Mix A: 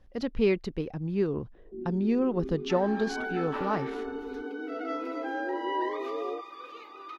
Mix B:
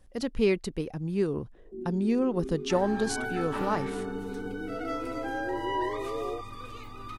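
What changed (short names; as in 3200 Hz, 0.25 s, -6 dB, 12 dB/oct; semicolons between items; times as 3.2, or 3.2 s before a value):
second sound: remove steep high-pass 310 Hz 72 dB/oct; master: remove running mean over 5 samples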